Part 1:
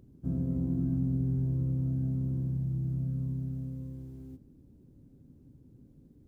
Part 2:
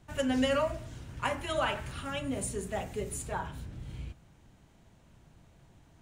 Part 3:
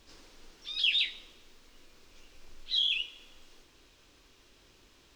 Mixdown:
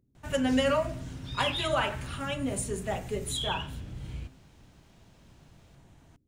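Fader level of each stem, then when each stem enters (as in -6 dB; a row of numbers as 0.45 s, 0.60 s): -14.5 dB, +2.5 dB, -6.5 dB; 0.00 s, 0.15 s, 0.60 s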